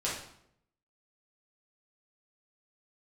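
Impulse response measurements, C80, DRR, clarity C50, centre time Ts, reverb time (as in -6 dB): 7.5 dB, -7.0 dB, 3.0 dB, 44 ms, 0.70 s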